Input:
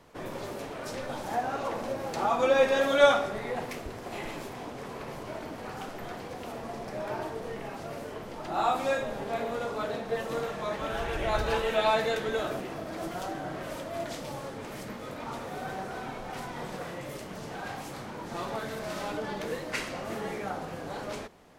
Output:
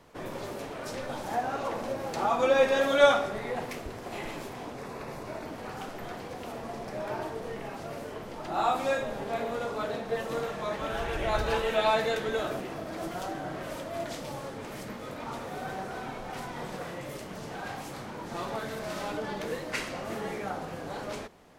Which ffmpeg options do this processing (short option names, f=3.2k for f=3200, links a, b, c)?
-filter_complex "[0:a]asettb=1/sr,asplit=3[a][b][c];[a]atrim=end=4.754[d];[b]atrim=start=4.75:end=5.47,asetpts=PTS-STARTPTS,afade=t=in:d=0.004:c=qsin,afade=t=out:st=0.716:d=0.004:c=qsin,bandreject=f=3.1k:w=7.9[e];[c]atrim=start=5.466[f];[d][e]acrossfade=d=0.004:c1=hsin:c2=qsin[g];[g][f]acrossfade=d=0.004:c1=qsin:c2=hsin"